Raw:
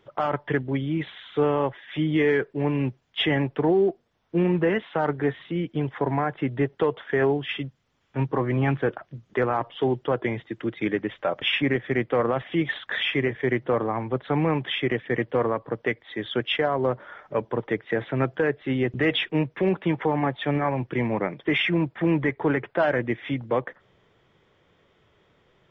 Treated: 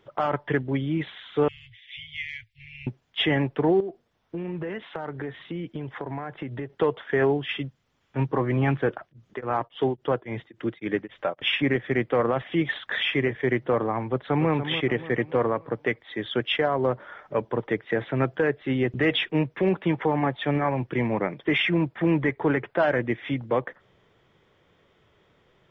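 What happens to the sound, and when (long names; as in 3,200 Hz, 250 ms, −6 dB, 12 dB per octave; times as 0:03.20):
0:01.48–0:02.87: Chebyshev band-stop filter 110–2,100 Hz, order 5
0:03.80–0:06.70: downward compressor 10 to 1, threshold −28 dBFS
0:09.00–0:11.59: tremolo along a rectified sine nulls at 3.6 Hz
0:14.04–0:14.51: delay throw 290 ms, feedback 45%, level −10 dB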